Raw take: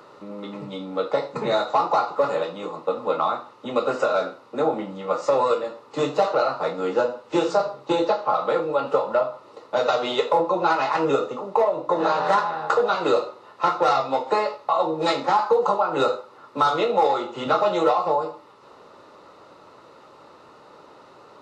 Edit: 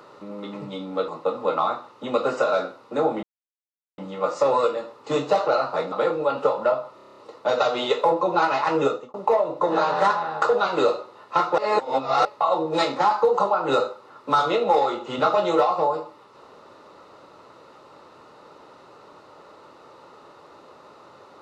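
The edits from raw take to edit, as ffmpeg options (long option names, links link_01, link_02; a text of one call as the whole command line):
ffmpeg -i in.wav -filter_complex "[0:a]asplit=14[link_01][link_02][link_03][link_04][link_05][link_06][link_07][link_08][link_09][link_10][link_11][link_12][link_13][link_14];[link_01]atrim=end=1.082[link_15];[link_02]atrim=start=2.698:end=4.85,asetpts=PTS-STARTPTS,afade=type=out:start_time=2.148:duration=0.004:curve=hsin,apad=pad_dur=0.75[link_16];[link_03]atrim=start=4.85:end=6.792,asetpts=PTS-STARTPTS,afade=type=in:duration=0.004:curve=hsin[link_17];[link_04]atrim=start=8.408:end=9.482[link_18];[link_05]atrim=start=9.448:end=9.482[link_19];[link_06]atrim=start=9.448:end=9.482[link_20];[link_07]atrim=start=9.448:end=9.482[link_21];[link_08]atrim=start=9.448:end=9.482[link_22];[link_09]atrim=start=9.448:end=9.482[link_23];[link_10]atrim=start=9.448:end=9.482[link_24];[link_11]atrim=start=9.448:end=11.42,asetpts=PTS-STARTPTS,afade=type=out:start_time=1.682:duration=0.29[link_25];[link_12]atrim=start=11.42:end=13.862,asetpts=PTS-STARTPTS,afade=type=in:duration=0.004:curve=hsin[link_26];[link_13]atrim=start=13.858:end=14.532,asetpts=PTS-STARTPTS,areverse[link_27];[link_14]atrim=start=14.528[link_28];[link_16][link_17]concat=n=2:v=0:a=1[link_29];[link_15][link_29]acrossfade=duration=0.004:curve1=hsin:curve2=hsin[link_30];[link_30][link_18]acrossfade=duration=0.004:curve1=hsin:curve2=hsin[link_31];[link_31][link_19]acrossfade=duration=0.004:curve1=hsin:curve2=hsin[link_32];[link_32][link_20]acrossfade=duration=0.004:curve1=hsin:curve2=hsin[link_33];[link_33][link_21]acrossfade=duration=0.004:curve1=hsin:curve2=hsin[link_34];[link_34][link_22]acrossfade=duration=0.004:curve1=hsin:curve2=hsin[link_35];[link_35][link_23]acrossfade=duration=0.004:curve1=hsin:curve2=hsin[link_36];[link_36][link_24]acrossfade=duration=0.004:curve1=hsin:curve2=hsin[link_37];[link_25][link_26]concat=n=2:v=0:a=1[link_38];[link_37][link_38]acrossfade=duration=0.004:curve1=hsin:curve2=hsin[link_39];[link_39][link_27]acrossfade=duration=0.004:curve1=hsin:curve2=hsin[link_40];[link_40][link_28]acrossfade=duration=0.004:curve1=hsin:curve2=hsin" out.wav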